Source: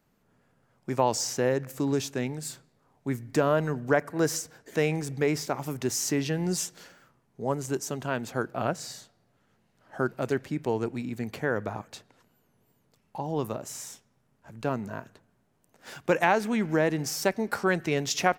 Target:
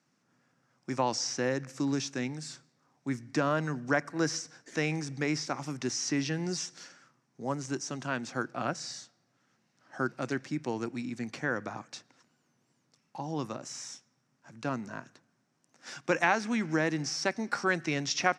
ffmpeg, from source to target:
-filter_complex "[0:a]acrossover=split=4500[a][b];[b]acompressor=threshold=-45dB:ratio=4:attack=1:release=60[c];[a][c]amix=inputs=2:normalize=0,highpass=f=140:w=0.5412,highpass=f=140:w=1.3066,equalizer=f=190:t=q:w=4:g=-7,equalizer=f=430:t=q:w=4:g=-10,equalizer=f=630:t=q:w=4:g=-6,equalizer=f=900:t=q:w=4:g=-4,equalizer=f=3.1k:t=q:w=4:g=-3,equalizer=f=5.6k:t=q:w=4:g=9,lowpass=f=8.6k:w=0.5412,lowpass=f=8.6k:w=1.3066"

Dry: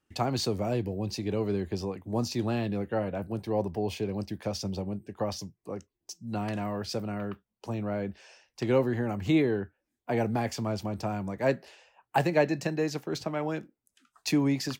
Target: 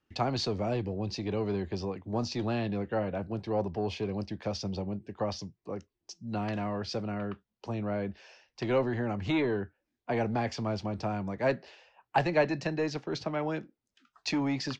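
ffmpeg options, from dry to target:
-filter_complex "[0:a]acrossover=split=520[a][b];[a]asoftclip=type=tanh:threshold=-26.5dB[c];[b]lowpass=f=5.6k:w=0.5412,lowpass=f=5.6k:w=1.3066[d];[c][d]amix=inputs=2:normalize=0"

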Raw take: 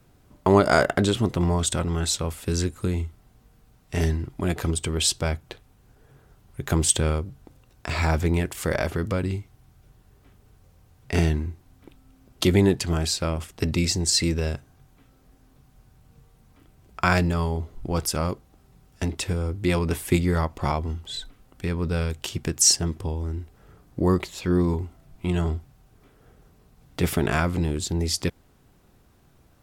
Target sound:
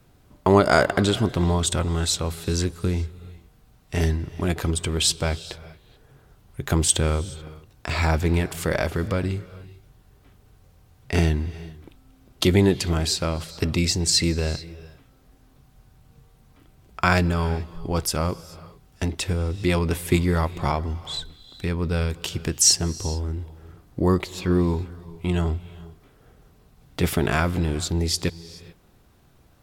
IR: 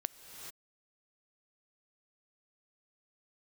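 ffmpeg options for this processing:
-filter_complex "[0:a]asplit=2[a][b];[b]equalizer=f=250:t=o:w=1:g=-5,equalizer=f=4k:t=o:w=1:g=6,equalizer=f=8k:t=o:w=1:g=-5[c];[1:a]atrim=start_sample=2205[d];[c][d]afir=irnorm=-1:irlink=0,volume=-8.5dB[e];[a][e]amix=inputs=2:normalize=0,volume=-1dB"

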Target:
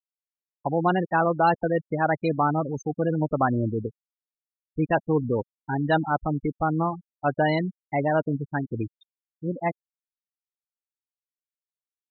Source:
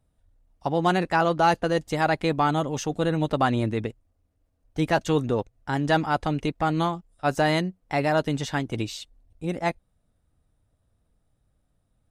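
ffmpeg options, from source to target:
-af "aecho=1:1:133:0.0631,afftfilt=real='re*gte(hypot(re,im),0.112)':imag='im*gte(hypot(re,im),0.112)':win_size=1024:overlap=0.75"

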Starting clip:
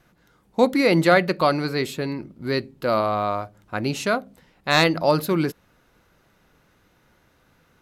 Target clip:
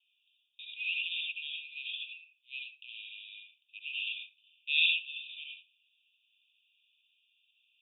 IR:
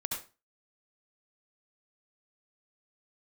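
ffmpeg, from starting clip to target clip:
-filter_complex "[0:a]asuperpass=centerf=3000:order=20:qfactor=2.5[a];[1:a]atrim=start_sample=2205[b];[a][b]afir=irnorm=-1:irlink=0"

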